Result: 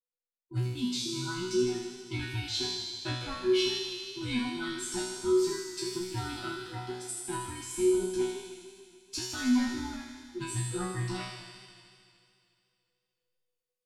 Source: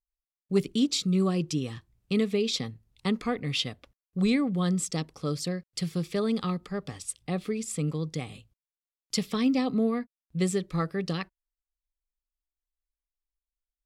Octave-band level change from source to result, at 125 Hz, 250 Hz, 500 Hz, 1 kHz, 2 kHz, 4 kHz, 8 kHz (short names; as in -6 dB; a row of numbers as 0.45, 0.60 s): -5.5, -5.0, 0.0, -2.0, +0.5, 0.0, 0.0 dB